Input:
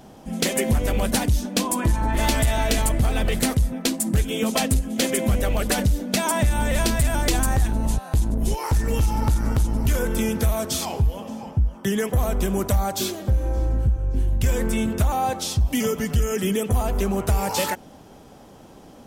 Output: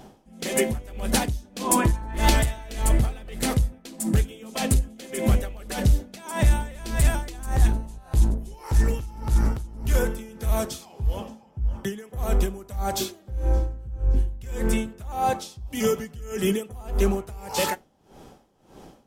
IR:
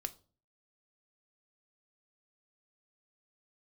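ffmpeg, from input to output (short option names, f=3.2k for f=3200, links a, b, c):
-filter_complex "[0:a]asplit=3[a][b][c];[a]afade=t=out:st=1.6:d=0.02[d];[b]acontrast=32,afade=t=in:st=1.6:d=0.02,afade=t=out:st=2.28:d=0.02[e];[c]afade=t=in:st=2.28:d=0.02[f];[d][e][f]amix=inputs=3:normalize=0,asplit=2[g][h];[1:a]atrim=start_sample=2205,highshelf=f=12k:g=-6[i];[h][i]afir=irnorm=-1:irlink=0,volume=4dB[j];[g][j]amix=inputs=2:normalize=0,aeval=exprs='val(0)*pow(10,-21*(0.5-0.5*cos(2*PI*1.7*n/s))/20)':c=same,volume=-6dB"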